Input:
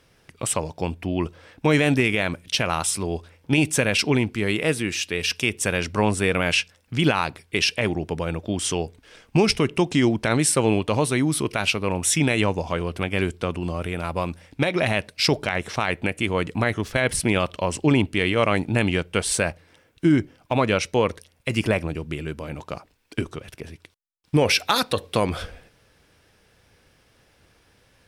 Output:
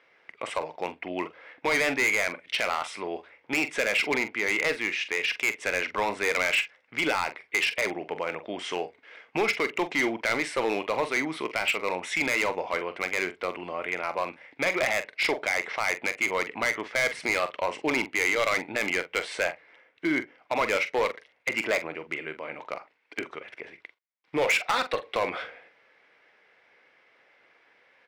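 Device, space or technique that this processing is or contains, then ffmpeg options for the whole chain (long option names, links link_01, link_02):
megaphone: -filter_complex "[0:a]highpass=510,lowpass=2500,equalizer=frequency=2100:width_type=o:width=0.32:gain=10,asoftclip=type=hard:threshold=-19.5dB,asplit=2[link_01][link_02];[link_02]adelay=44,volume=-11.5dB[link_03];[link_01][link_03]amix=inputs=2:normalize=0"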